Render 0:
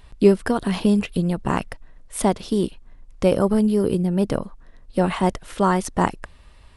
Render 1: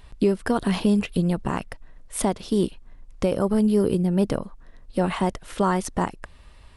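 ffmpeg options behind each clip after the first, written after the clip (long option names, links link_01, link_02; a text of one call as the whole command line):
ffmpeg -i in.wav -af "alimiter=limit=-10.5dB:level=0:latency=1:release=323" out.wav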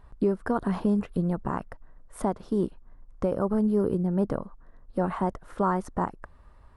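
ffmpeg -i in.wav -af "highshelf=frequency=1900:width_type=q:width=1.5:gain=-11.5,volume=-4.5dB" out.wav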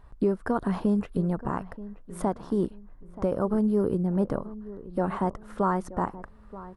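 ffmpeg -i in.wav -filter_complex "[0:a]asplit=2[link_01][link_02];[link_02]adelay=929,lowpass=frequency=1500:poles=1,volume=-16dB,asplit=2[link_03][link_04];[link_04]adelay=929,lowpass=frequency=1500:poles=1,volume=0.34,asplit=2[link_05][link_06];[link_06]adelay=929,lowpass=frequency=1500:poles=1,volume=0.34[link_07];[link_01][link_03][link_05][link_07]amix=inputs=4:normalize=0" out.wav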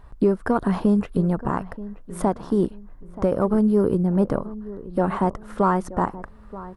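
ffmpeg -i in.wav -af "aeval=exprs='0.211*(cos(1*acos(clip(val(0)/0.211,-1,1)))-cos(1*PI/2))+0.00211*(cos(6*acos(clip(val(0)/0.211,-1,1)))-cos(6*PI/2))':channel_layout=same,volume=5.5dB" out.wav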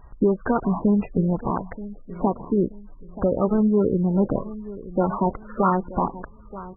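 ffmpeg -i in.wav -ar 24000 -c:a libmp3lame -b:a 8k out.mp3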